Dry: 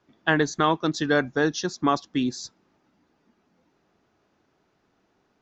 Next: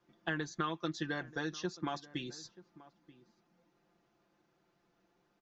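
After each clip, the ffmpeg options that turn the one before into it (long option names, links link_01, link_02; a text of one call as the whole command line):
ffmpeg -i in.wav -filter_complex "[0:a]acrossover=split=1600|3300[link_01][link_02][link_03];[link_01]acompressor=threshold=-29dB:ratio=4[link_04];[link_02]acompressor=threshold=-36dB:ratio=4[link_05];[link_03]acompressor=threshold=-45dB:ratio=4[link_06];[link_04][link_05][link_06]amix=inputs=3:normalize=0,aecho=1:1:5.8:0.67,asplit=2[link_07][link_08];[link_08]adelay=932.9,volume=-19dB,highshelf=frequency=4000:gain=-21[link_09];[link_07][link_09]amix=inputs=2:normalize=0,volume=-8dB" out.wav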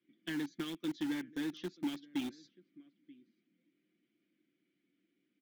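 ffmpeg -i in.wav -filter_complex "[0:a]asplit=3[link_01][link_02][link_03];[link_01]bandpass=frequency=270:width_type=q:width=8,volume=0dB[link_04];[link_02]bandpass=frequency=2290:width_type=q:width=8,volume=-6dB[link_05];[link_03]bandpass=frequency=3010:width_type=q:width=8,volume=-9dB[link_06];[link_04][link_05][link_06]amix=inputs=3:normalize=0,asplit=2[link_07][link_08];[link_08]acrusher=bits=7:mix=0:aa=0.000001,volume=-8dB[link_09];[link_07][link_09]amix=inputs=2:normalize=0,asoftclip=type=hard:threshold=-38dB,volume=8dB" out.wav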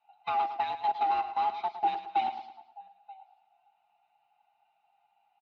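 ffmpeg -i in.wav -af "afftfilt=real='real(if(lt(b,1008),b+24*(1-2*mod(floor(b/24),2)),b),0)':imag='imag(if(lt(b,1008),b+24*(1-2*mod(floor(b/24),2)),b),0)':win_size=2048:overlap=0.75,highpass=130,equalizer=frequency=160:width_type=q:width=4:gain=-9,equalizer=frequency=290:width_type=q:width=4:gain=-3,equalizer=frequency=490:width_type=q:width=4:gain=-3,equalizer=frequency=1800:width_type=q:width=4:gain=-6,equalizer=frequency=3300:width_type=q:width=4:gain=-6,lowpass=frequency=3400:width=0.5412,lowpass=frequency=3400:width=1.3066,aecho=1:1:109|218|327|436:0.282|0.116|0.0474|0.0194,volume=9dB" out.wav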